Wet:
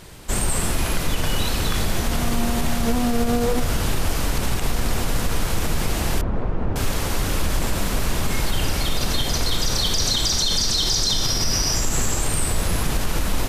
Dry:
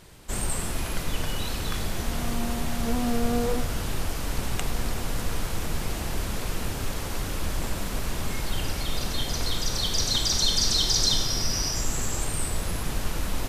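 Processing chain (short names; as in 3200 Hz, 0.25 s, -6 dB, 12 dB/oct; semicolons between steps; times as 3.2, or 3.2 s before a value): limiter -19 dBFS, peak gain reduction 10 dB; 6.21–6.76 LPF 1000 Hz 12 dB/oct; gain +8 dB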